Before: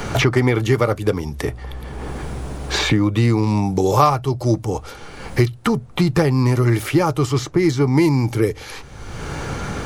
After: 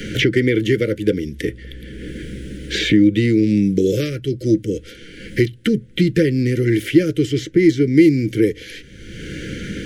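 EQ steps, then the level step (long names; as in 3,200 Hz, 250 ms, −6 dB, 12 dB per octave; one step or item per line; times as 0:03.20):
Chebyshev band-stop filter 520–1,500 Hz, order 4
dynamic equaliser 460 Hz, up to +4 dB, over −31 dBFS, Q 1.7
thirty-one-band graphic EQ 200 Hz +9 dB, 315 Hz +9 dB, 630 Hz +6 dB, 2,000 Hz +8 dB, 3,150 Hz +9 dB
−4.0 dB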